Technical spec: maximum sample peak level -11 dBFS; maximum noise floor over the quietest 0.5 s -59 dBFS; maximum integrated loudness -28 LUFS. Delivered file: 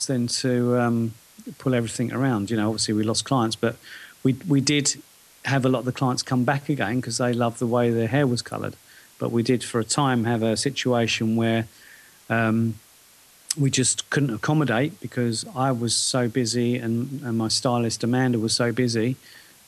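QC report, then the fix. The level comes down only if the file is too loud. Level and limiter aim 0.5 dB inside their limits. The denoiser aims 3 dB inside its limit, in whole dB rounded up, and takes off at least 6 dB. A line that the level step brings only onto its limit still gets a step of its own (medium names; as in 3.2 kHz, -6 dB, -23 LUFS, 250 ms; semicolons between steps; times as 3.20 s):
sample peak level -5.0 dBFS: fail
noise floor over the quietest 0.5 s -53 dBFS: fail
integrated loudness -23.5 LUFS: fail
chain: noise reduction 6 dB, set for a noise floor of -53 dBFS; trim -5 dB; peak limiter -11.5 dBFS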